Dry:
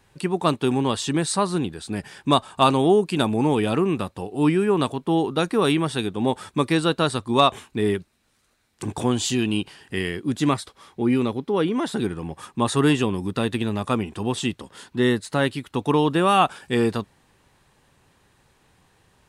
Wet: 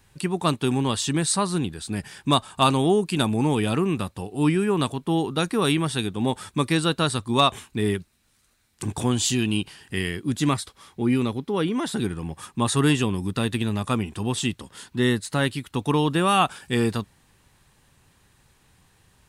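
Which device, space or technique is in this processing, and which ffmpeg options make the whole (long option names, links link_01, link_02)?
smiley-face EQ: -af "lowshelf=frequency=160:gain=4,equalizer=frequency=510:width_type=o:width=2.1:gain=-4.5,highshelf=frequency=7300:gain=6.5"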